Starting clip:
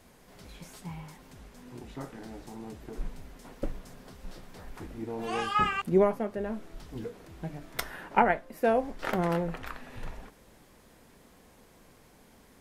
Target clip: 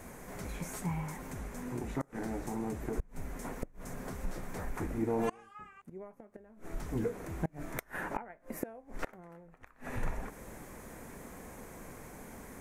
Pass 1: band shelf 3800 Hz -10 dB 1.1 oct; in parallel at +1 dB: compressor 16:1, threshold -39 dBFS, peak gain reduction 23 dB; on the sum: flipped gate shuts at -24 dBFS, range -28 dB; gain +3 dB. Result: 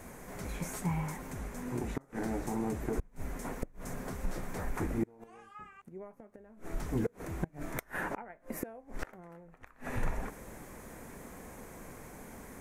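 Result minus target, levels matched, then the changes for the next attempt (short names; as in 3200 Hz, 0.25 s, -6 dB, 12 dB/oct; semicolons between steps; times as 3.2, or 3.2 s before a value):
compressor: peak gain reduction -7.5 dB
change: compressor 16:1, threshold -47 dBFS, peak gain reduction 30.5 dB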